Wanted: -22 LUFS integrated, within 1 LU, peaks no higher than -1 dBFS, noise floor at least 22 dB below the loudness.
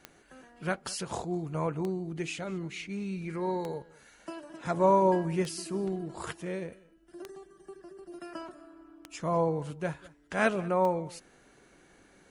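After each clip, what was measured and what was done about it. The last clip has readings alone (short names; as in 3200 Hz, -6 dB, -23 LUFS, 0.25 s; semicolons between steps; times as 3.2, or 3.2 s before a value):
clicks 7; loudness -31.5 LUFS; peak -13.0 dBFS; loudness target -22.0 LUFS
-> de-click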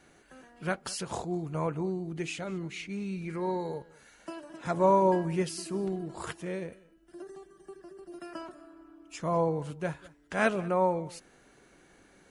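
clicks 0; loudness -31.5 LUFS; peak -13.0 dBFS; loudness target -22.0 LUFS
-> gain +9.5 dB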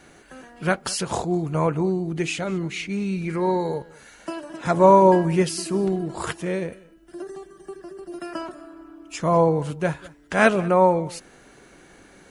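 loudness -22.0 LUFS; peak -3.5 dBFS; noise floor -51 dBFS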